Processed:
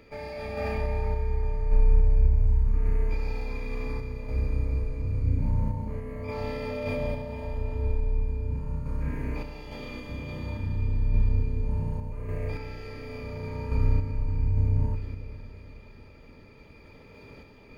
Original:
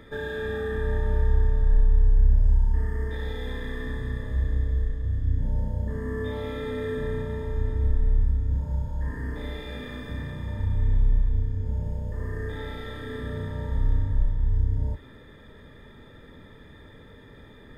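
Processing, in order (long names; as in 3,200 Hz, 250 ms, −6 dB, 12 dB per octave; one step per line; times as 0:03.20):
feedback delay with all-pass diffusion 494 ms, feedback 44%, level −10 dB
sample-and-hold tremolo
formants moved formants +5 semitones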